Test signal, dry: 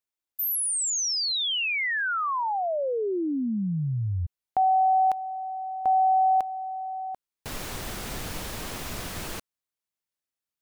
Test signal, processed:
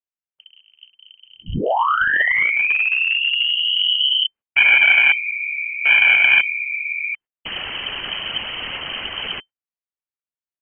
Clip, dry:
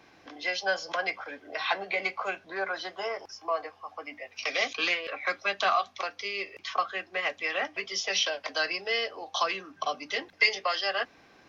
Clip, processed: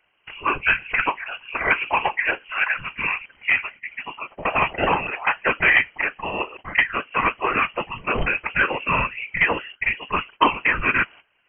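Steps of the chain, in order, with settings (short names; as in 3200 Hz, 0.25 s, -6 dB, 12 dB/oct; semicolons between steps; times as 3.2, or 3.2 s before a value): gate -49 dBFS, range -17 dB; dynamic EQ 1300 Hz, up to +3 dB, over -34 dBFS, Q 0.82; whisperiser; one-sided clip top -21.5 dBFS; inverted band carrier 3100 Hz; gain +8 dB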